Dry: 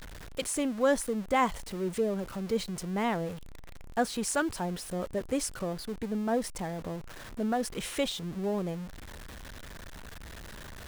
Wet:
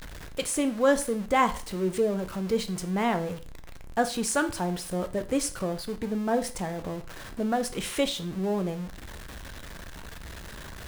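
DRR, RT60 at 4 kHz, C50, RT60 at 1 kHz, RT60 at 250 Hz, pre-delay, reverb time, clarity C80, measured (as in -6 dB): 8.5 dB, 0.40 s, 15.0 dB, 0.40 s, 0.45 s, 4 ms, 0.40 s, 19.0 dB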